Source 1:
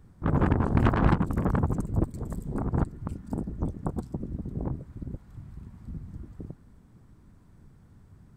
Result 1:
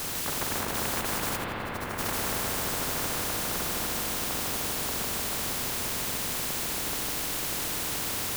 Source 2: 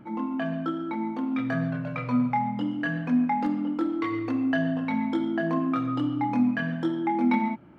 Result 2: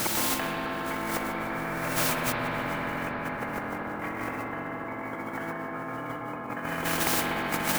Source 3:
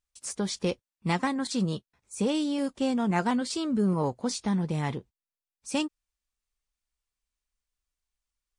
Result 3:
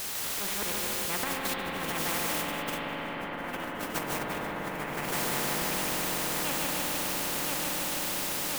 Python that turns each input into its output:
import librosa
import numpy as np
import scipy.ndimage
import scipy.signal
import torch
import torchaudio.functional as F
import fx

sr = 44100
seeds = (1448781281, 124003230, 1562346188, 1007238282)

y = fx.reverse_delay_fb(x, sr, ms=511, feedback_pct=64, wet_db=-9.5)
y = fx.low_shelf(y, sr, hz=180.0, db=-11.0)
y = fx.auto_swell(y, sr, attack_ms=441.0)
y = scipy.ndimage.gaussian_filter1d(y, 4.9, mode='constant')
y = fx.dmg_noise_colour(y, sr, seeds[0], colour='white', level_db=-68.0)
y = fx.echo_feedback(y, sr, ms=152, feedback_pct=51, wet_db=-3.5)
y = fx.over_compress(y, sr, threshold_db=-37.0, ratio=-0.5)
y = fx.rev_spring(y, sr, rt60_s=3.9, pass_ms=(43, 60), chirp_ms=25, drr_db=1.5)
y = fx.spectral_comp(y, sr, ratio=4.0)
y = y * librosa.db_to_amplitude(5.0)